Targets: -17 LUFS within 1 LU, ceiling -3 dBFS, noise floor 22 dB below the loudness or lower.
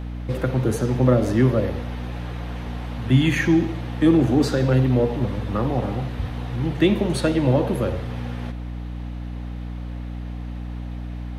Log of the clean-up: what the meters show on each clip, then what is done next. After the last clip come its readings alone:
hum 60 Hz; harmonics up to 300 Hz; hum level -28 dBFS; loudness -22.0 LUFS; peak -5.5 dBFS; loudness target -17.0 LUFS
-> notches 60/120/180/240/300 Hz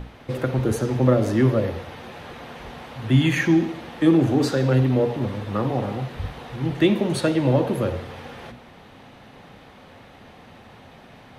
hum none; loudness -22.0 LUFS; peak -5.5 dBFS; loudness target -17.0 LUFS
-> gain +5 dB; limiter -3 dBFS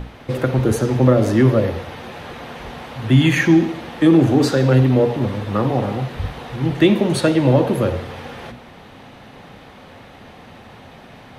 loudness -17.0 LUFS; peak -3.0 dBFS; noise floor -42 dBFS

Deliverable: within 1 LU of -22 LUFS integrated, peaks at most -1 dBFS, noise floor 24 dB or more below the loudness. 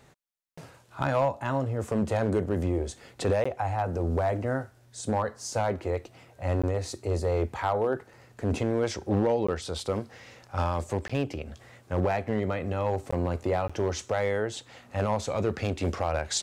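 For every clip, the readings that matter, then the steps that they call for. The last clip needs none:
clipped 0.7%; flat tops at -18.0 dBFS; dropouts 6; longest dropout 15 ms; loudness -29.5 LUFS; peak -18.0 dBFS; loudness target -22.0 LUFS
-> clip repair -18 dBFS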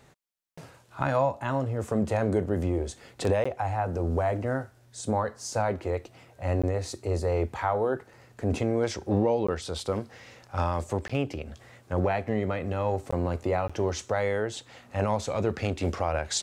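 clipped 0.0%; dropouts 6; longest dropout 15 ms
-> interpolate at 3.44/6.62/9.47/11.08/13.11/13.68, 15 ms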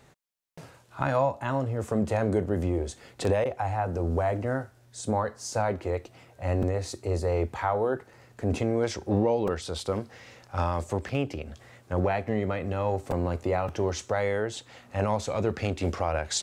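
dropouts 0; loudness -29.0 LUFS; peak -11.5 dBFS; loudness target -22.0 LUFS
-> gain +7 dB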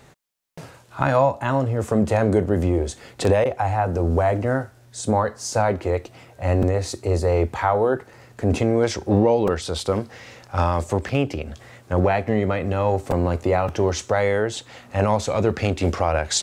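loudness -22.0 LUFS; peak -4.5 dBFS; noise floor -51 dBFS

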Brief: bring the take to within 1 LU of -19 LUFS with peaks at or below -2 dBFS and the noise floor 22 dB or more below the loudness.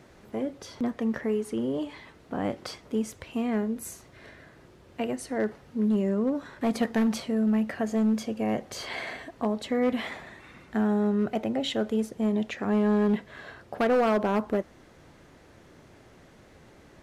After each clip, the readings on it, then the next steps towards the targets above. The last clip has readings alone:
clipped 1.1%; flat tops at -19.0 dBFS; loudness -28.5 LUFS; peak -19.0 dBFS; loudness target -19.0 LUFS
-> clip repair -19 dBFS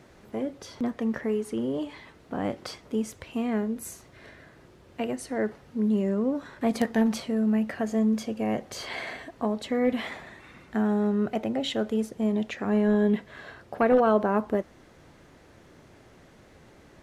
clipped 0.0%; loudness -28.0 LUFS; peak -10.0 dBFS; loudness target -19.0 LUFS
-> gain +9 dB; limiter -2 dBFS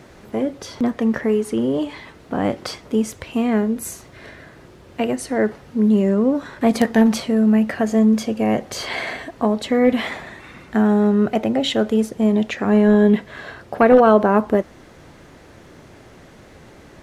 loudness -19.0 LUFS; peak -2.0 dBFS; noise floor -46 dBFS

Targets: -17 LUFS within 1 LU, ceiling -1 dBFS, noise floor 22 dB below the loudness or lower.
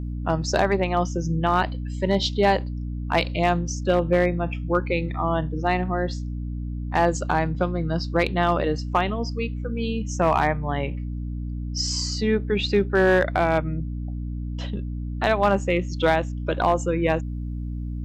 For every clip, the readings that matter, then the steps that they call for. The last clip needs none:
clipped 0.3%; flat tops at -11.0 dBFS; hum 60 Hz; harmonics up to 300 Hz; hum level -27 dBFS; loudness -24.0 LUFS; peak -11.0 dBFS; loudness target -17.0 LUFS
-> clip repair -11 dBFS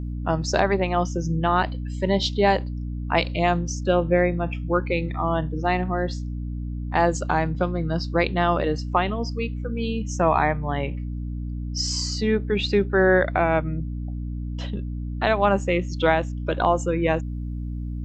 clipped 0.0%; hum 60 Hz; harmonics up to 300 Hz; hum level -27 dBFS
-> notches 60/120/180/240/300 Hz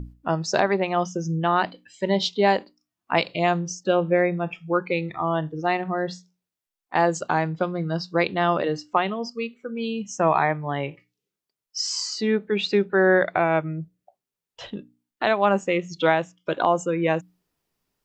hum none; loudness -24.0 LUFS; peak -7.0 dBFS; loudness target -17.0 LUFS
-> gain +7 dB; limiter -1 dBFS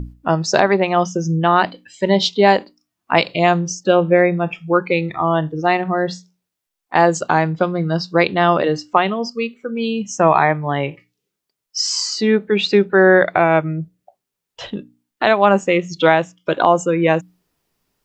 loudness -17.0 LUFS; peak -1.0 dBFS; noise floor -81 dBFS

